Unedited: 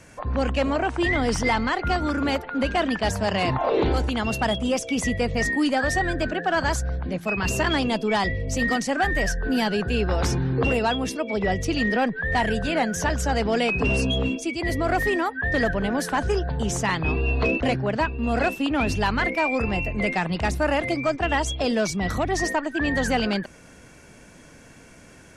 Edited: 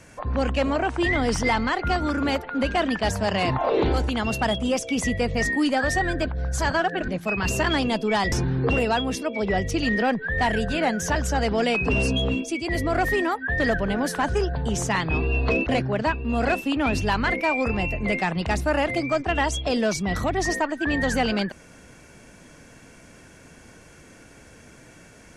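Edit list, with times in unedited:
0:06.26–0:07.08: reverse
0:08.32–0:10.26: remove

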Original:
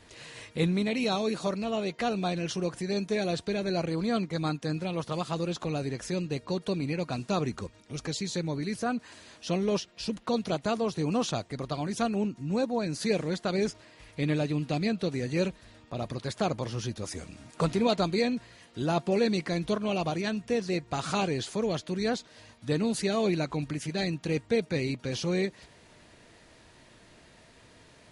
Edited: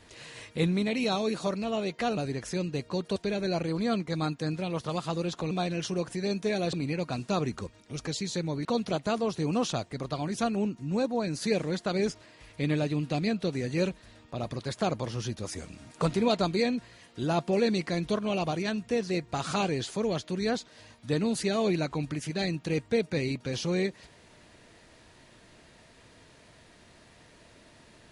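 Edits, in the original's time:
0:02.17–0:03.39: swap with 0:05.74–0:06.73
0:08.65–0:10.24: remove

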